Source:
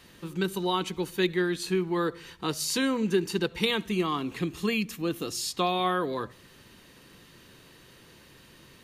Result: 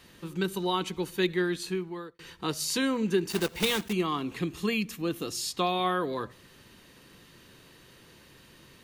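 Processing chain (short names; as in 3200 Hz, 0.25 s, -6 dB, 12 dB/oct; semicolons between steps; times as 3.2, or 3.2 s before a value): 1.52–2.19 fade out; 3.3–3.94 block floating point 3-bit; gain -1 dB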